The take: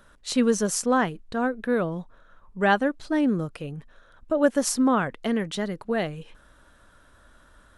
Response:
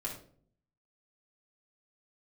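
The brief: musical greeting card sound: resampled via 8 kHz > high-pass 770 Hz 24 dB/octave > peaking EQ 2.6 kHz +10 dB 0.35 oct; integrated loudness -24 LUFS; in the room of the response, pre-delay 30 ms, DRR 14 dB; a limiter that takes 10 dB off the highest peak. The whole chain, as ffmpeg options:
-filter_complex "[0:a]alimiter=limit=0.133:level=0:latency=1,asplit=2[s0][s1];[1:a]atrim=start_sample=2205,adelay=30[s2];[s1][s2]afir=irnorm=-1:irlink=0,volume=0.168[s3];[s0][s3]amix=inputs=2:normalize=0,aresample=8000,aresample=44100,highpass=f=770:w=0.5412,highpass=f=770:w=1.3066,equalizer=f=2600:t=o:w=0.35:g=10,volume=3.35"

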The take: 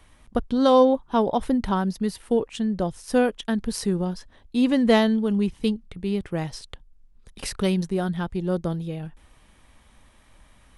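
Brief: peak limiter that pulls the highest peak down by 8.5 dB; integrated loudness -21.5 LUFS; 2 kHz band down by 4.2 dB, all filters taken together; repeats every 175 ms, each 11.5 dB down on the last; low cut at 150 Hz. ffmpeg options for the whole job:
-af "highpass=150,equalizer=f=2000:t=o:g=-5.5,alimiter=limit=0.168:level=0:latency=1,aecho=1:1:175|350|525:0.266|0.0718|0.0194,volume=1.78"

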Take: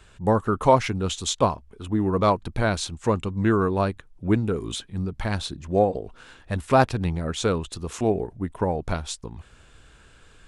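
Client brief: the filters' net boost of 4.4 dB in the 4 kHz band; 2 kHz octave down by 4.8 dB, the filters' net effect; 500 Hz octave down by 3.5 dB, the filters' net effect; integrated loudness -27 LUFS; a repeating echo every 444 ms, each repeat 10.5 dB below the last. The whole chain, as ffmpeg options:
-af "equalizer=f=500:t=o:g=-4,equalizer=f=2000:t=o:g=-8.5,equalizer=f=4000:t=o:g=7.5,aecho=1:1:444|888|1332:0.299|0.0896|0.0269,volume=0.891"

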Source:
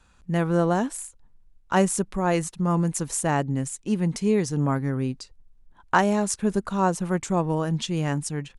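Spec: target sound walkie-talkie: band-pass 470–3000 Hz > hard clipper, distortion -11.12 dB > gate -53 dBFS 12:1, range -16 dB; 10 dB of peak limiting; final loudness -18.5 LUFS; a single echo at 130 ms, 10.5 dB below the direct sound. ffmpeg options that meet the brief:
-af "alimiter=limit=0.158:level=0:latency=1,highpass=470,lowpass=3000,aecho=1:1:130:0.299,asoftclip=type=hard:threshold=0.0531,agate=range=0.158:threshold=0.00224:ratio=12,volume=6.68"

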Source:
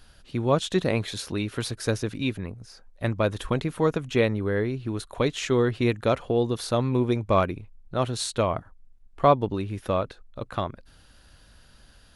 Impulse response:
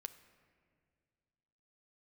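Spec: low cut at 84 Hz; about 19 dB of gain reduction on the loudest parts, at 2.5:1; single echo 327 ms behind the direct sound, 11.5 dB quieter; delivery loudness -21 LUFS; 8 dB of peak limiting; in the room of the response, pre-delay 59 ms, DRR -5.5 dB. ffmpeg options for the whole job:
-filter_complex "[0:a]highpass=84,acompressor=threshold=0.00708:ratio=2.5,alimiter=level_in=2.11:limit=0.0631:level=0:latency=1,volume=0.473,aecho=1:1:327:0.266,asplit=2[s0][s1];[1:a]atrim=start_sample=2205,adelay=59[s2];[s1][s2]afir=irnorm=-1:irlink=0,volume=3.16[s3];[s0][s3]amix=inputs=2:normalize=0,volume=5.62"

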